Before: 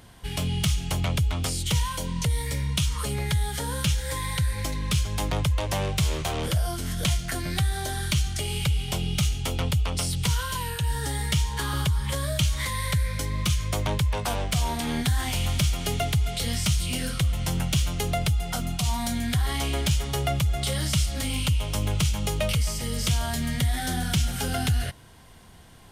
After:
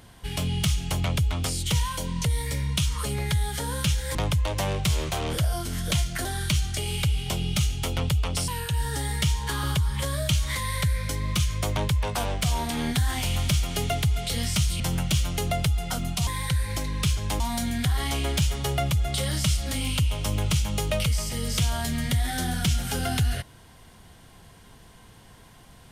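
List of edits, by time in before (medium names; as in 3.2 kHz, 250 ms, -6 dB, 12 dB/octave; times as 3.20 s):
4.15–5.28 s: move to 18.89 s
7.38–7.87 s: delete
10.10–10.58 s: delete
16.90–17.42 s: delete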